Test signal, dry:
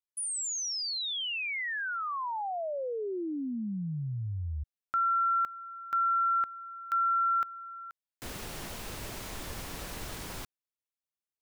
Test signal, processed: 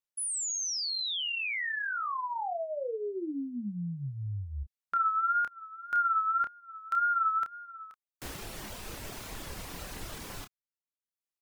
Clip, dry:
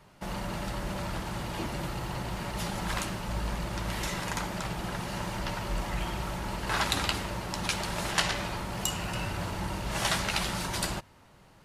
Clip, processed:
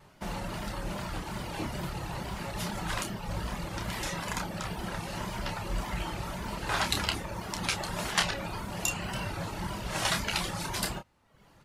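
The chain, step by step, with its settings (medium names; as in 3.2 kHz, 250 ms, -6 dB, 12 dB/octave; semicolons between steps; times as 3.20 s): wow and flutter 2.1 Hz 77 cents; reverb removal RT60 0.81 s; doubling 29 ms -7 dB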